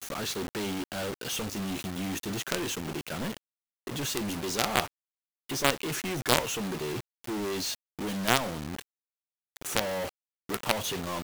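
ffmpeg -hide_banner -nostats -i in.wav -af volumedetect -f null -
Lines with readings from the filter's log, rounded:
mean_volume: -32.8 dB
max_volume: -6.2 dB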